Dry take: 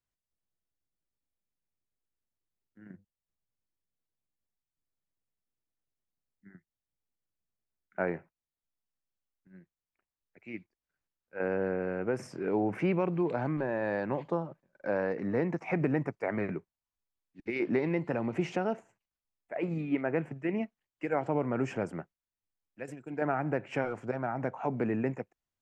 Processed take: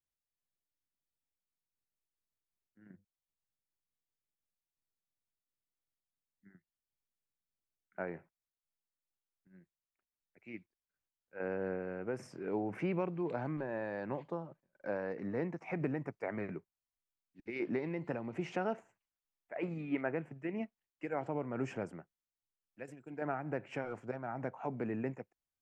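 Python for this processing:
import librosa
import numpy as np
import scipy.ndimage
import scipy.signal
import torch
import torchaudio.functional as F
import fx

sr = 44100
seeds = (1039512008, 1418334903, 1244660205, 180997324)

y = fx.peak_eq(x, sr, hz=1500.0, db=4.0, octaves=2.5, at=(18.46, 20.12))
y = fx.am_noise(y, sr, seeds[0], hz=5.7, depth_pct=55)
y = y * librosa.db_to_amplitude(-4.5)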